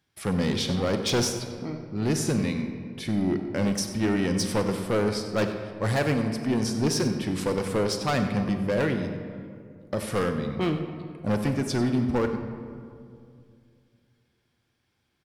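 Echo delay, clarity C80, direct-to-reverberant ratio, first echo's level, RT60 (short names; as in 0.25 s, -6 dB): 95 ms, 8.0 dB, 6.5 dB, -15.0 dB, 2.3 s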